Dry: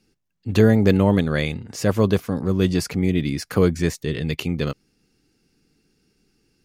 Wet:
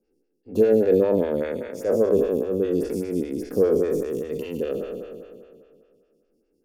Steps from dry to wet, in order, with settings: spectral trails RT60 2.18 s; ten-band EQ 125 Hz -10 dB, 250 Hz +3 dB, 500 Hz +10 dB, 1000 Hz -8 dB, 2000 Hz -7 dB, 4000 Hz -10 dB, 8000 Hz -5 dB; photocell phaser 5 Hz; gain -6.5 dB

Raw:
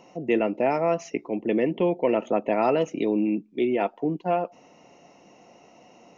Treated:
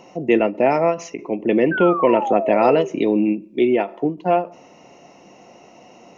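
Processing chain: painted sound fall, 1.71–2.89, 380–1600 Hz -30 dBFS; reverb RT60 0.55 s, pre-delay 3 ms, DRR 17 dB; ending taper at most 210 dB/s; gain +6.5 dB

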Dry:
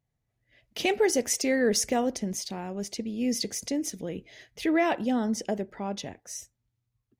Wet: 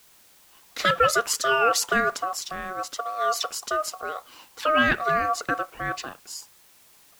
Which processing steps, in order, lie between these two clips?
ring modulator 930 Hz; requantised 10-bit, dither triangular; dynamic EQ 2000 Hz, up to +6 dB, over -43 dBFS, Q 1.4; gain +4.5 dB

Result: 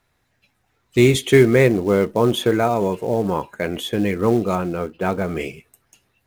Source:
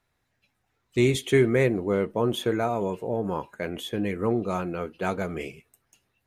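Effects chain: 4.55–5.28 tape spacing loss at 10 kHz 20 dB; in parallel at -4.5 dB: short-mantissa float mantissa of 2-bit; on the sum: gain +3.5 dB

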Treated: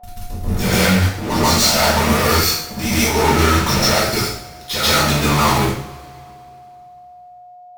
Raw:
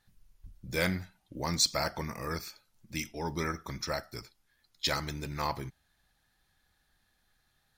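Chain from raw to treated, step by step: in parallel at +2 dB: compressor, threshold -45 dBFS, peak gain reduction 21.5 dB; on the sum: fuzz box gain 49 dB, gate -47 dBFS; reverse echo 0.136 s -6 dB; whine 720 Hz -38 dBFS; two-slope reverb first 0.54 s, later 2.7 s, from -22 dB, DRR -6.5 dB; gain -7 dB

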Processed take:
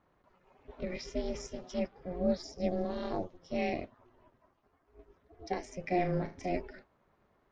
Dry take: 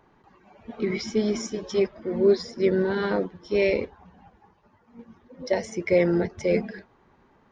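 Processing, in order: 2.43–3.37 fifteen-band EQ 630 Hz +4 dB, 1600 Hz -11 dB, 6300 Hz +9 dB; ring modulator 180 Hz; 5.8–6.49 flutter echo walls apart 6.3 m, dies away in 0.28 s; gain -8 dB

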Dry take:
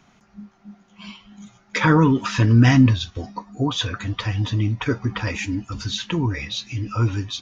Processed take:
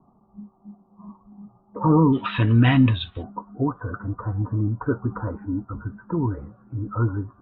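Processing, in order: rippled Chebyshev low-pass 1200 Hz, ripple 3 dB, from 2.12 s 3900 Hz, from 3.22 s 1500 Hz

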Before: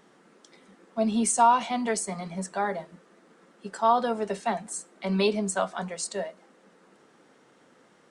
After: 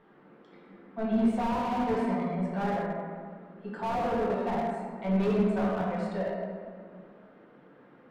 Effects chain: 1.65–3.81 HPF 120 Hz 24 dB/oct; soft clip -22.5 dBFS, distortion -9 dB; air absorption 460 m; reverb RT60 1.9 s, pre-delay 6 ms, DRR -4.5 dB; slew limiter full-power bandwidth 38 Hz; gain -2 dB

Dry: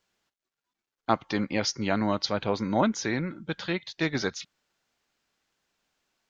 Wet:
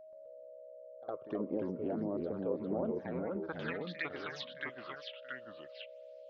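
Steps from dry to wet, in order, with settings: treble ducked by the level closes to 1600 Hz, closed at -25 dBFS; limiter -18.5 dBFS, peak gain reduction 10 dB; band-pass sweep 420 Hz -> 3200 Hz, 2.7–4.33; compressor, threshold -37 dBFS, peak gain reduction 7.5 dB; phaser stages 8, 1.5 Hz, lowest notch 230–2700 Hz; whine 630 Hz -57 dBFS; echoes that change speed 0.128 s, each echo -2 st, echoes 2; pre-echo 60 ms -16.5 dB; gain +5.5 dB

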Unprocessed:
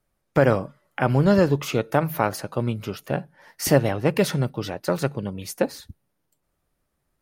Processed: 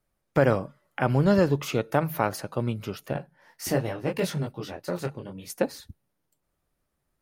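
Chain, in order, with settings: 3.13–5.5 detuned doubles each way 27 cents; gain -3 dB

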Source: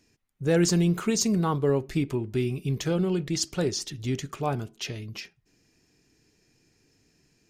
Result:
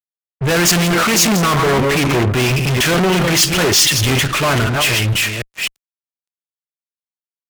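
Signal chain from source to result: reverse delay 0.258 s, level -10 dB; band shelf 2000 Hz +13 dB; small resonant body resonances 630/1000 Hz, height 9 dB, ringing for 30 ms; fuzz box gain 46 dB, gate -49 dBFS; three-band expander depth 100%

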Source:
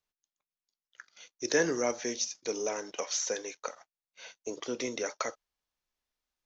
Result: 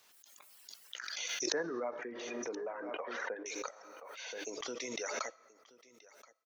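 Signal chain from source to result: 1.52–3.46 LPF 1600 Hz 24 dB/oct; reverb removal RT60 1.3 s; HPF 530 Hz 6 dB/oct; in parallel at +1.5 dB: compressor, threshold -46 dBFS, peak gain reduction 18.5 dB; on the sum: echo 1.027 s -21.5 dB; on a send at -22 dB: reverb RT60 1.2 s, pre-delay 20 ms; on the sum: backwards sustainer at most 22 dB/s; gain -6.5 dB

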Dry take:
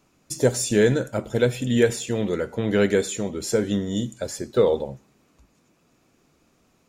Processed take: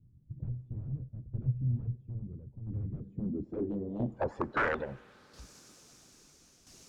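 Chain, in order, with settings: bin magnitudes rounded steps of 15 dB; low shelf 78 Hz +7 dB; harmonic-percussive split harmonic -8 dB; in parallel at +1 dB: compressor 5:1, threshold -34 dBFS, peak gain reduction 17.5 dB; on the sum: wrapped overs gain 17 dB; added noise violet -49 dBFS; soft clip -24.5 dBFS, distortion -12 dB; tremolo saw down 0.75 Hz, depth 65%; low-pass sweep 120 Hz -> 6000 Hz, 2.9–5.49; added harmonics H 6 -39 dB, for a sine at -18 dBFS; on a send at -23 dB: reverb RT60 4.1 s, pre-delay 10 ms; on the sum: gain -1 dB

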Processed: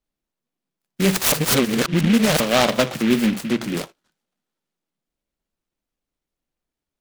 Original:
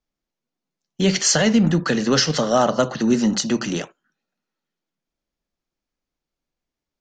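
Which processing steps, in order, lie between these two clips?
1.32–2.4 reverse; 3.36–3.77 LPF 1400 Hz 6 dB/oct; noise-modulated delay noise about 2200 Hz, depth 0.13 ms

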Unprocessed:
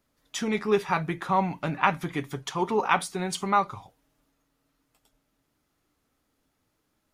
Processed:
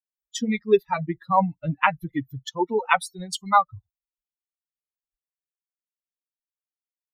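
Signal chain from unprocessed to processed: per-bin expansion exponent 3; high shelf 5300 Hz -5.5 dB; gain +8.5 dB

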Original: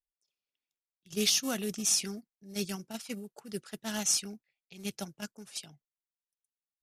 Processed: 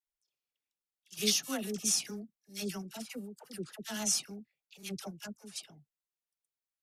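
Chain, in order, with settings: dispersion lows, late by 67 ms, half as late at 890 Hz; record warp 45 rpm, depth 100 cents; gain -2.5 dB

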